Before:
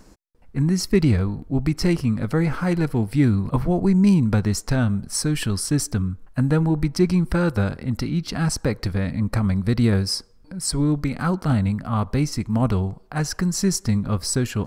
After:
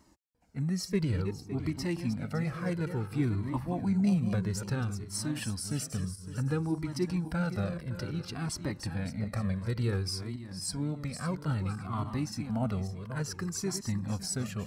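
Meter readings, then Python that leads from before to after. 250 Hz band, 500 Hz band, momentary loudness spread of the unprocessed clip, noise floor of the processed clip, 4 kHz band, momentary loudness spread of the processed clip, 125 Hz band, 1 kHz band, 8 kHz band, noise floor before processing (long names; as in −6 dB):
−11.5 dB, −11.5 dB, 6 LU, −47 dBFS, −10.5 dB, 6 LU, −11.0 dB, −10.5 dB, −10.0 dB, −50 dBFS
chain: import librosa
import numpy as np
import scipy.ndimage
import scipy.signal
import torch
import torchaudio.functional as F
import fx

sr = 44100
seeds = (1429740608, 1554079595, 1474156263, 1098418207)

y = fx.reverse_delay_fb(x, sr, ms=280, feedback_pct=51, wet_db=-9.0)
y = scipy.signal.sosfilt(scipy.signal.butter(2, 86.0, 'highpass', fs=sr, output='sos'), y)
y = fx.comb_cascade(y, sr, direction='falling', hz=0.58)
y = y * 10.0 ** (-6.5 / 20.0)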